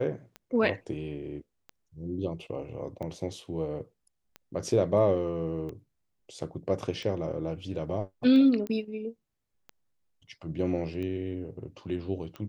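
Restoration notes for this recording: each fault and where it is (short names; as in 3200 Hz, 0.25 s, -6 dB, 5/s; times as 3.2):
tick 45 rpm -27 dBFS
8.67 pop -23 dBFS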